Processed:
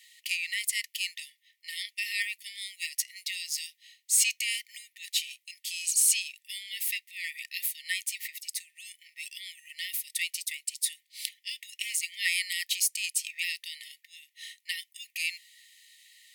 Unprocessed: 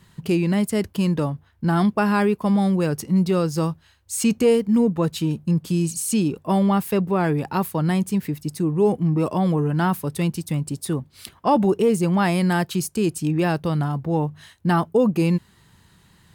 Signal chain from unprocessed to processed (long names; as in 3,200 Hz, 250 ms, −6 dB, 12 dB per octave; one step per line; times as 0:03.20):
linear-phase brick-wall high-pass 1,800 Hz
level +4.5 dB